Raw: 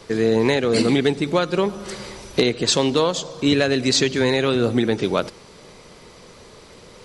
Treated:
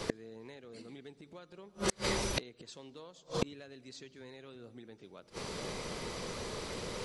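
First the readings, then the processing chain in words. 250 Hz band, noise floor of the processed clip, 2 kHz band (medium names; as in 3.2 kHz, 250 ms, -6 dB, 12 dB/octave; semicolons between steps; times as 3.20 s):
-22.5 dB, -63 dBFS, -17.5 dB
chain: inverted gate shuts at -19 dBFS, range -36 dB; trim +4 dB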